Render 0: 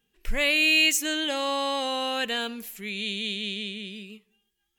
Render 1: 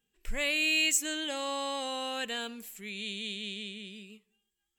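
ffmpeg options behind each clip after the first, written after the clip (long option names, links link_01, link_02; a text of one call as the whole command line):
ffmpeg -i in.wav -af "equalizer=frequency=7700:width_type=o:width=0.22:gain=10,volume=-7dB" out.wav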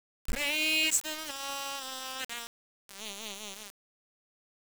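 ffmpeg -i in.wav -af "aeval=exprs='val(0)*gte(abs(val(0)),0.0335)':channel_layout=same" out.wav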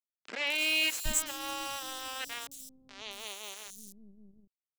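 ffmpeg -i in.wav -filter_complex "[0:a]acrossover=split=280|5500[link_01][link_02][link_03];[link_03]adelay=220[link_04];[link_01]adelay=770[link_05];[link_05][link_02][link_04]amix=inputs=3:normalize=0" out.wav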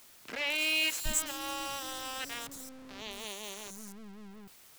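ffmpeg -i in.wav -af "aeval=exprs='val(0)+0.5*0.00668*sgn(val(0))':channel_layout=same,volume=-1.5dB" out.wav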